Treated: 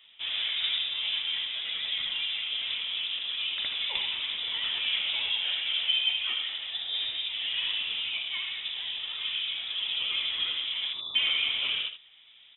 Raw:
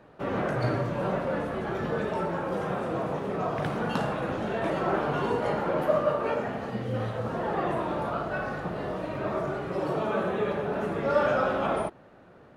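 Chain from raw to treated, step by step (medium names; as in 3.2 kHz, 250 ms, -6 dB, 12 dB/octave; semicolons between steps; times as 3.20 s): vibrato 9.7 Hz 65 cents; spectral selection erased 10.93–11.15 s, 320–2400 Hz; on a send: delay 77 ms -9.5 dB; on the sum: frequency inversion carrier 3.7 kHz; trim -3 dB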